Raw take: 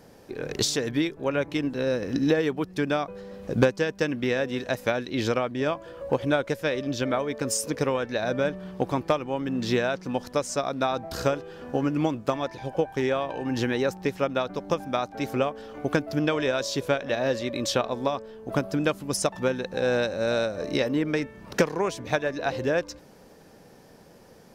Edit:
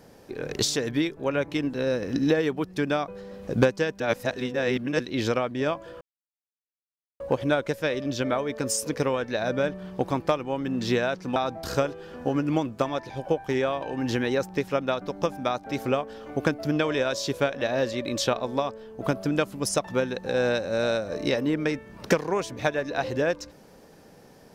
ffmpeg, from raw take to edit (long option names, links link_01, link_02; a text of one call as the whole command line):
ffmpeg -i in.wav -filter_complex "[0:a]asplit=5[link_01][link_02][link_03][link_04][link_05];[link_01]atrim=end=4.002[link_06];[link_02]atrim=start=3.998:end=5.002,asetpts=PTS-STARTPTS,areverse[link_07];[link_03]atrim=start=4.998:end=6.01,asetpts=PTS-STARTPTS,afade=type=out:start_time=1.008:duration=0.004:curve=hsin,apad=pad_dur=1.19[link_08];[link_04]atrim=start=6.01:end=10.172,asetpts=PTS-STARTPTS,afade=type=in:duration=0.004:curve=hsin[link_09];[link_05]atrim=start=10.838[link_10];[link_06][link_07]acrossfade=duration=0.004:curve1=hsin:curve2=hsin[link_11];[link_08][link_09]concat=n=2:v=0:a=1[link_12];[link_11][link_12]acrossfade=duration=0.004:curve1=hsin:curve2=hsin[link_13];[link_13][link_10]acrossfade=duration=0.004:curve1=hsin:curve2=hsin" out.wav